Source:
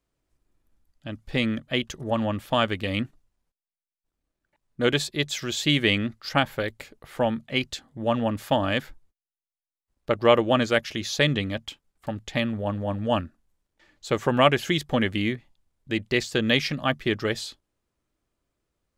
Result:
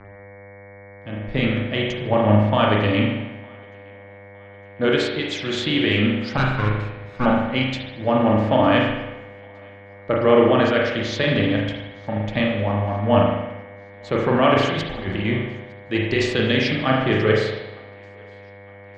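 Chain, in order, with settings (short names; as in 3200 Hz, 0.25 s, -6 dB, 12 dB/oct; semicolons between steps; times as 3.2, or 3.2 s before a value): 6.37–7.26 minimum comb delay 0.77 ms; 15.97–16.54 high shelf 5500 Hz +10 dB; limiter -13.5 dBFS, peak gain reduction 9.5 dB; 14.54–15.25 negative-ratio compressor -29 dBFS, ratio -0.5; thinning echo 0.91 s, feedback 57%, level -22.5 dB; buzz 100 Hz, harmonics 23, -41 dBFS -3 dB/oct; air absorption 160 m; reverb RT60 1.2 s, pre-delay 38 ms, DRR -2 dB; three-band expander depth 40%; gain +4.5 dB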